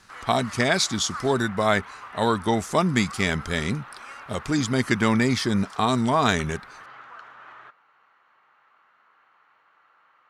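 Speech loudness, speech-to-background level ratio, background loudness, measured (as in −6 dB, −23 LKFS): −23.5 LKFS, 17.5 dB, −41.0 LKFS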